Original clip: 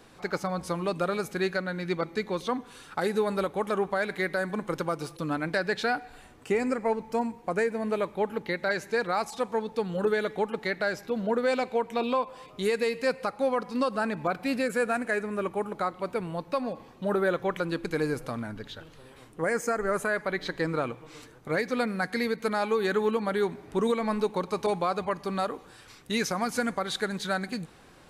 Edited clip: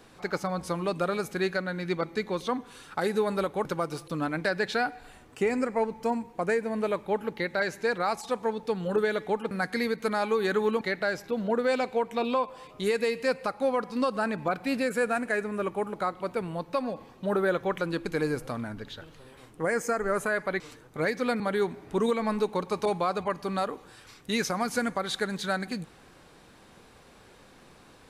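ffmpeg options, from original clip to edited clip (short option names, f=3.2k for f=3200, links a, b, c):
-filter_complex "[0:a]asplit=6[a][b][c][d][e][f];[a]atrim=end=3.652[g];[b]atrim=start=4.738:end=10.602[h];[c]atrim=start=21.908:end=23.212[i];[d]atrim=start=10.598:end=20.392[j];[e]atrim=start=21.108:end=21.912[k];[f]atrim=start=23.208[l];[g][h]acrossfade=d=0.004:c1=hsin:c2=hsin[m];[m][i]acrossfade=d=0.004:c1=hsin:c2=hsin[n];[n][j]acrossfade=d=0.004:c1=hsin:c2=hsin[o];[o][k]acrossfade=d=0.004:c1=hsin:c2=hsin[p];[p][l]acrossfade=d=0.004:c1=hsin:c2=hsin"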